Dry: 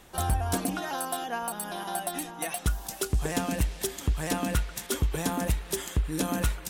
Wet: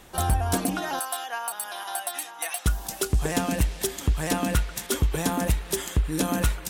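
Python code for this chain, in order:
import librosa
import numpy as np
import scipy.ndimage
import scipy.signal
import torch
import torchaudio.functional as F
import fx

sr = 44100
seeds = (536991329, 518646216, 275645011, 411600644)

y = fx.highpass(x, sr, hz=850.0, slope=12, at=(0.99, 2.66))
y = y * 10.0 ** (3.5 / 20.0)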